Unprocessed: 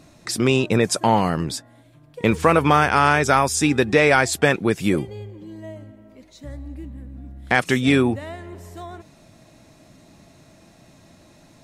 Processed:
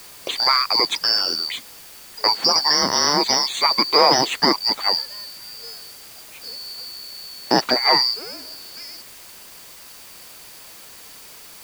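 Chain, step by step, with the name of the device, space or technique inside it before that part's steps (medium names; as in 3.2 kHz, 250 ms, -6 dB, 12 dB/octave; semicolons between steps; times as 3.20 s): split-band scrambled radio (four frequency bands reordered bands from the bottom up 2341; band-pass 310–3100 Hz; white noise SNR 20 dB); trim +6.5 dB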